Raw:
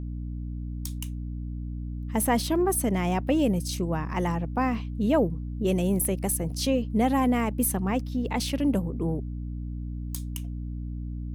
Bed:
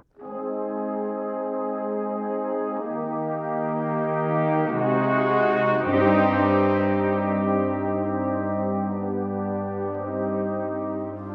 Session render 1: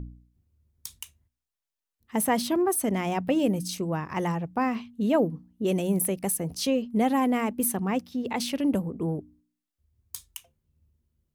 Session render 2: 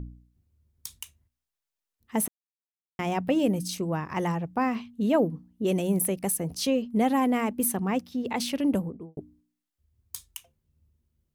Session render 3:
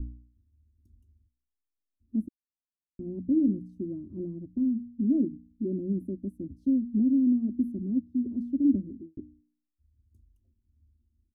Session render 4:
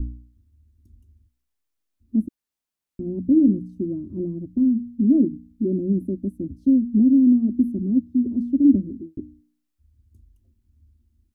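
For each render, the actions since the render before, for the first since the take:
de-hum 60 Hz, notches 5
2.28–2.99 s: mute; 8.77–9.17 s: studio fade out
inverse Chebyshev low-pass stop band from 780 Hz, stop band 50 dB; comb 3.2 ms, depth 83%
trim +8 dB

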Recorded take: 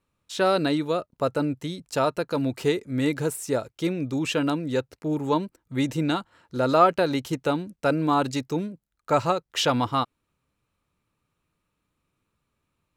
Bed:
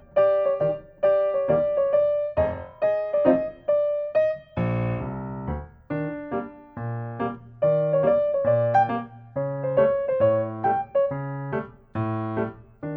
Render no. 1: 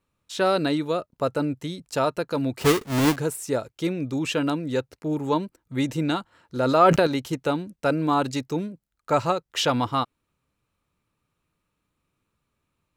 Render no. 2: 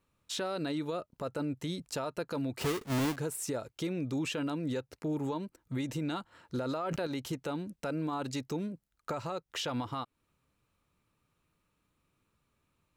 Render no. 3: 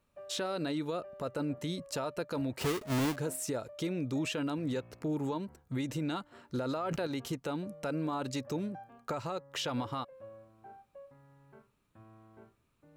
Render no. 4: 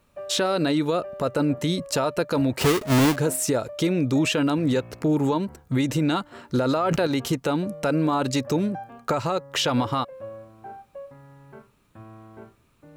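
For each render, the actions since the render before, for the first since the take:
2.61–3.16 s: square wave that keeps the level; 6.63–7.07 s: decay stretcher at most 23 dB/s
compression 4:1, threshold -30 dBFS, peak gain reduction 15.5 dB; peak limiter -26.5 dBFS, peak gain reduction 8.5 dB
add bed -30 dB
trim +12 dB

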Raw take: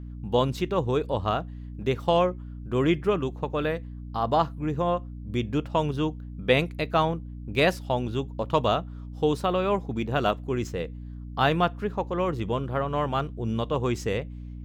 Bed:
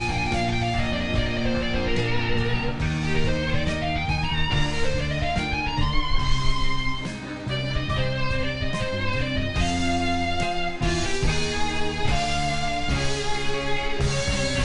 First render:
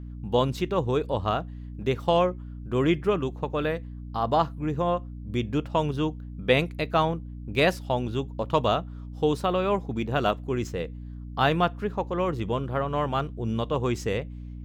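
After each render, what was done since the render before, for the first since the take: no audible change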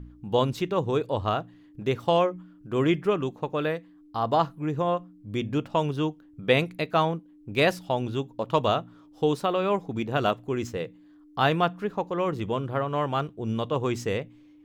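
de-hum 60 Hz, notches 4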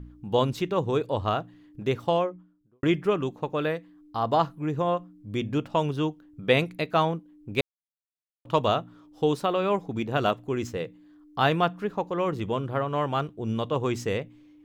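1.87–2.83 s: studio fade out; 7.61–8.45 s: mute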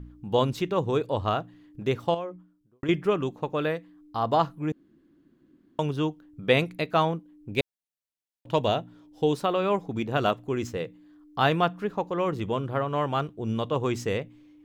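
2.14–2.89 s: compression, threshold -29 dBFS; 4.72–5.79 s: room tone; 7.50–9.34 s: peaking EQ 1.2 kHz -12.5 dB 0.29 oct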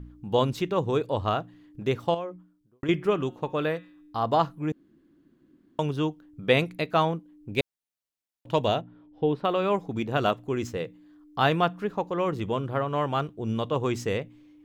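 2.92–4.21 s: de-hum 180.8 Hz, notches 23; 8.81–9.45 s: distance through air 410 m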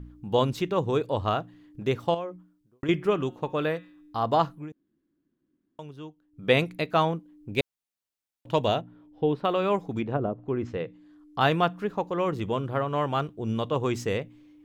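4.53–6.47 s: dip -14.5 dB, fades 0.16 s; 9.98–11.41 s: low-pass that closes with the level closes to 460 Hz, closed at -20.5 dBFS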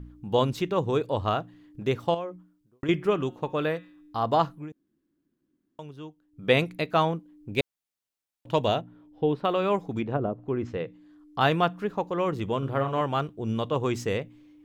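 12.58–13.01 s: doubling 44 ms -7 dB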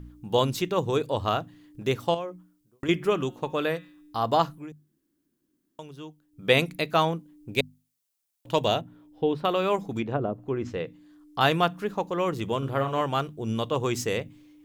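treble shelf 4.7 kHz +11.5 dB; hum notches 50/100/150/200/250 Hz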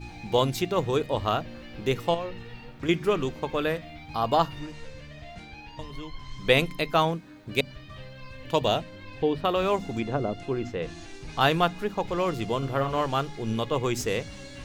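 add bed -18.5 dB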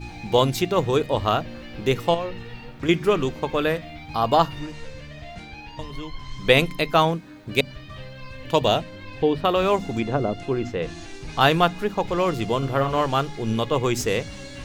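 trim +4.5 dB; peak limiter -3 dBFS, peak gain reduction 1 dB

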